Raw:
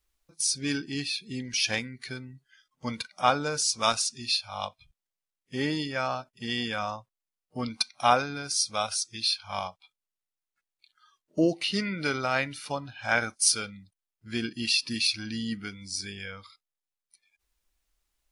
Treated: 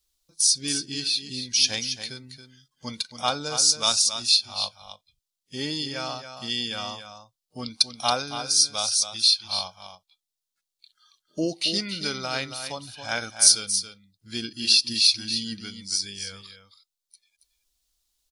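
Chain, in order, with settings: resonant high shelf 2.9 kHz +9 dB, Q 1.5; on a send: delay 276 ms -9.5 dB; on the sum: trim -3 dB

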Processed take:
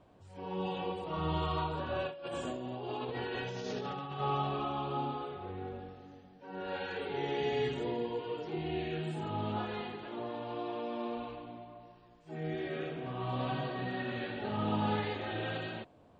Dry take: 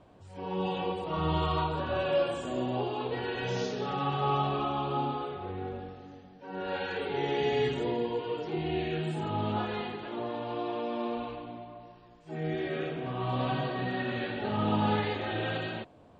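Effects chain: 2.07–4.20 s: compressor with a negative ratio -35 dBFS, ratio -1; trim -4.5 dB

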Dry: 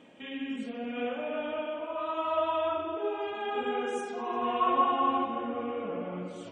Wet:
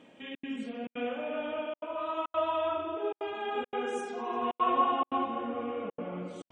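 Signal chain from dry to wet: trance gate "xxxx.xxxxx.xxxxx" 173 bpm -60 dB; trim -1 dB

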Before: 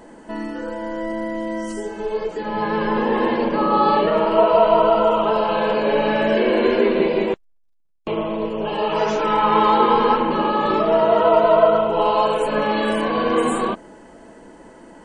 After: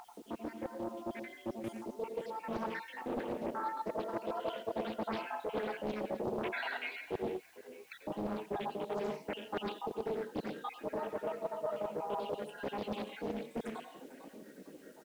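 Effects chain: random holes in the spectrogram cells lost 76%; Doppler pass-by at 5.52 s, 16 m/s, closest 19 m; high-pass 160 Hz 24 dB/octave; peaking EQ 1.1 kHz -13 dB 0.42 oct; reverberation, pre-delay 82 ms, DRR 6.5 dB; reverse; compression 20:1, threshold -39 dBFS, peak gain reduction 23 dB; reverse; frequency-shifting echo 451 ms, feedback 35%, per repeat +36 Hz, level -19 dB; upward compressor, threshold -49 dBFS; treble shelf 3.7 kHz -8.5 dB; added noise white -72 dBFS; loudspeaker Doppler distortion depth 0.74 ms; trim +6 dB

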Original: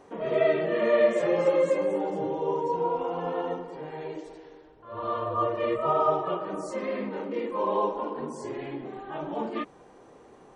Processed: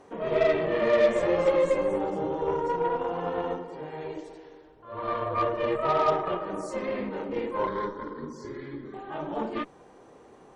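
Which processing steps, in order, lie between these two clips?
Chebyshev shaper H 8 -25 dB, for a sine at -10.5 dBFS; 7.67–8.94 s: static phaser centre 2.7 kHz, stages 6

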